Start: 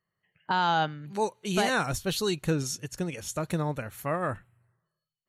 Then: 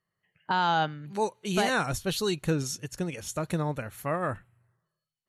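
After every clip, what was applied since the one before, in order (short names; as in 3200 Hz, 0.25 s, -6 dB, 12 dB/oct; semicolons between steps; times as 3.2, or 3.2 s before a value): Chebyshev low-pass 12000 Hz, order 3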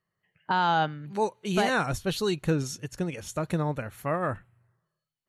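high shelf 4000 Hz -6 dB; gain +1.5 dB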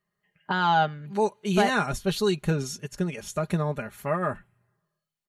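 comb 4.9 ms, depth 60%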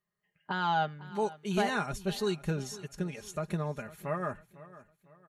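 feedback echo 0.502 s, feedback 38%, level -18 dB; gain -7 dB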